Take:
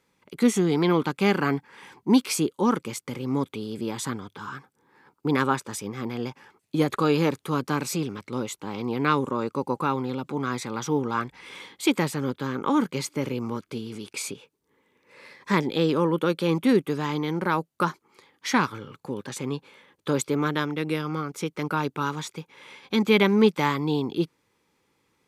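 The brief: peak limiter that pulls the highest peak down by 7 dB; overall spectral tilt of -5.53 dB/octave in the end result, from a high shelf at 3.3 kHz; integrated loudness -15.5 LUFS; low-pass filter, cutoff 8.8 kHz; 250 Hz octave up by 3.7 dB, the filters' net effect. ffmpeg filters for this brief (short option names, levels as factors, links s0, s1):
-af "lowpass=8800,equalizer=f=250:t=o:g=4.5,highshelf=f=3300:g=3,volume=3.16,alimiter=limit=0.75:level=0:latency=1"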